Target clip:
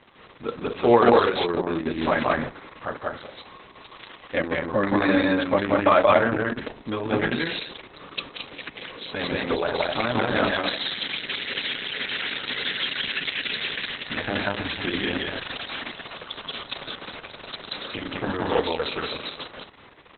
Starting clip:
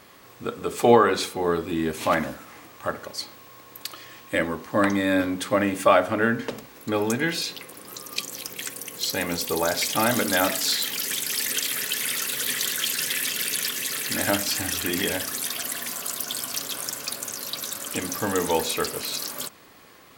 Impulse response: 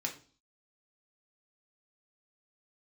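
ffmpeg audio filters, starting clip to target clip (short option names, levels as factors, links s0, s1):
-af "aecho=1:1:180.8|218.7:0.891|0.398" -ar 48000 -c:a libopus -b:a 6k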